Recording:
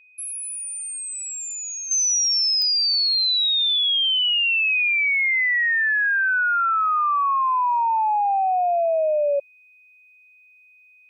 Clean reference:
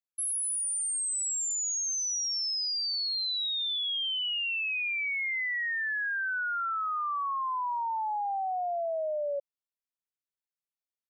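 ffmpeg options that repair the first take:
-af "adeclick=t=4,bandreject=f=2.5k:w=30,asetnsamples=n=441:p=0,asendcmd='1.91 volume volume -11dB',volume=0dB"

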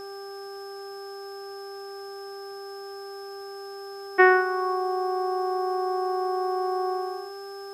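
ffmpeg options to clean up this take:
-af "adeclick=t=4,bandreject=f=395.7:t=h:w=4,bandreject=f=791.4:t=h:w=4,bandreject=f=1.1871k:t=h:w=4,bandreject=f=1.5828k:t=h:w=4,bandreject=f=5.2k:w=30,agate=range=-21dB:threshold=-31dB"

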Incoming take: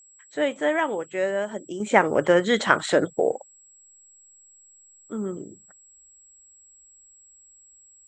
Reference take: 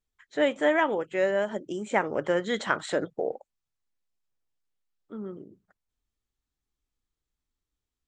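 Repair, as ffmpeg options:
-af "bandreject=f=7.7k:w=30,asetnsamples=n=441:p=0,asendcmd='1.8 volume volume -7.5dB',volume=0dB"

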